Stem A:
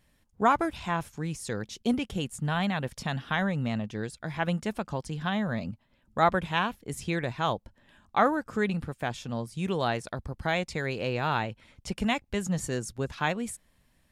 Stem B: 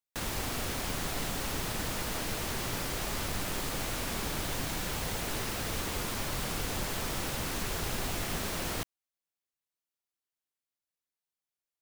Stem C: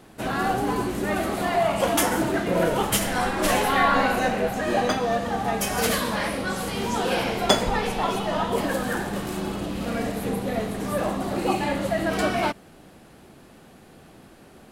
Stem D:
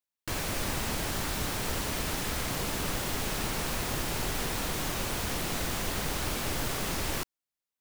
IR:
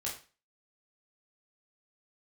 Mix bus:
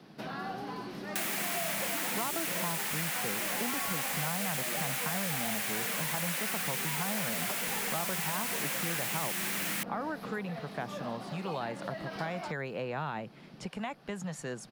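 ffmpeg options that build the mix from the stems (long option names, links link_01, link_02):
-filter_complex "[0:a]alimiter=limit=-19.5dB:level=0:latency=1:release=65,lowpass=frequency=2700:poles=1,adelay=1750,volume=1dB[link_01];[1:a]highpass=910,highshelf=frequency=1600:width_type=q:width=1.5:gain=11.5,adelay=1000,volume=2.5dB[link_02];[2:a]acompressor=threshold=-33dB:ratio=2,highshelf=frequency=6200:width_type=q:width=3:gain=-7,volume=-6.5dB[link_03];[3:a]bandpass=frequency=4800:width_type=q:width=5:csg=0,adelay=800,volume=-9.5dB[link_04];[link_01][link_02][link_03][link_04]amix=inputs=4:normalize=0,lowshelf=frequency=110:width_type=q:width=3:gain=-12,acrossover=split=91|580|1700|7600[link_05][link_06][link_07][link_08][link_09];[link_05]acompressor=threshold=-58dB:ratio=4[link_10];[link_06]acompressor=threshold=-42dB:ratio=4[link_11];[link_07]acompressor=threshold=-35dB:ratio=4[link_12];[link_08]acompressor=threshold=-48dB:ratio=4[link_13];[link_09]acompressor=threshold=-36dB:ratio=4[link_14];[link_10][link_11][link_12][link_13][link_14]amix=inputs=5:normalize=0"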